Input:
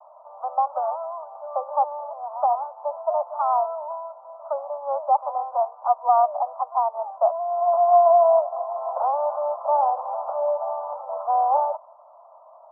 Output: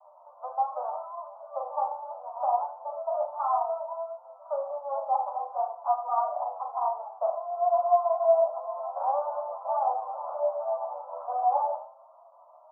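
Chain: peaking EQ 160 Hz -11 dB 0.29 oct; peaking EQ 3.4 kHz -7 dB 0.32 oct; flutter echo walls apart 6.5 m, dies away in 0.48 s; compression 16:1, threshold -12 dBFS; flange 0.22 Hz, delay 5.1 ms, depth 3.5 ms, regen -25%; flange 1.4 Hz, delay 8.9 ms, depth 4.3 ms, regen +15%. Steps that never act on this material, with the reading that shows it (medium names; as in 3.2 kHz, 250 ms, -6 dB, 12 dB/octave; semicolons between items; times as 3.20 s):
peaking EQ 160 Hz: input has nothing below 480 Hz; peaking EQ 3.4 kHz: input has nothing above 1.3 kHz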